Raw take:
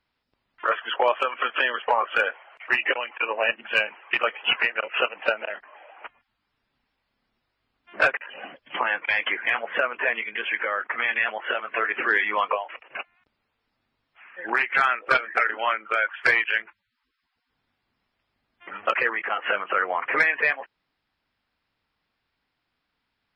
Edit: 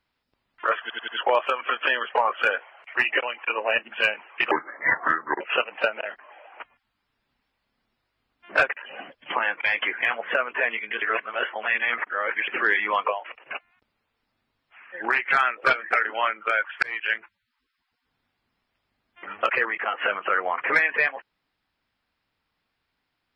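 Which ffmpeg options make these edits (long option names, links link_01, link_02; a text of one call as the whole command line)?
ffmpeg -i in.wav -filter_complex "[0:a]asplit=9[link_01][link_02][link_03][link_04][link_05][link_06][link_07][link_08][link_09];[link_01]atrim=end=0.902[link_10];[link_02]atrim=start=0.808:end=0.902[link_11];[link_03]atrim=start=0.808:end=0.902[link_12];[link_04]atrim=start=0.808:end=4.244[link_13];[link_05]atrim=start=4.24:end=4.85,asetpts=PTS-STARTPTS,asetrate=29988,aresample=44100,atrim=end_sample=39560,asetpts=PTS-STARTPTS[link_14];[link_06]atrim=start=4.846:end=10.462[link_15];[link_07]atrim=start=10.458:end=11.922,asetpts=PTS-STARTPTS,areverse[link_16];[link_08]atrim=start=11.918:end=16.27,asetpts=PTS-STARTPTS,afade=type=out:start_time=4.348:duration=0.004:curve=hsin[link_17];[link_09]atrim=start=16.27,asetpts=PTS-STARTPTS,afade=type=in:duration=0.3[link_18];[link_10][link_11]acrossfade=duration=0.004:curve1=hsin:curve2=hsin[link_19];[link_19][link_12]acrossfade=duration=0.004:curve1=hsin:curve2=hsin[link_20];[link_20][link_13]acrossfade=duration=0.004:curve1=hsin:curve2=hsin[link_21];[link_21][link_14]acrossfade=duration=0.004:curve1=hsin:curve2=hsin[link_22];[link_22][link_15]acrossfade=duration=0.004:curve1=hsin:curve2=hsin[link_23];[link_23][link_16]acrossfade=duration=0.004:curve1=hsin:curve2=hsin[link_24];[link_17][link_18]concat=n=2:v=0:a=1[link_25];[link_24][link_25]acrossfade=duration=0.004:curve1=hsin:curve2=hsin" out.wav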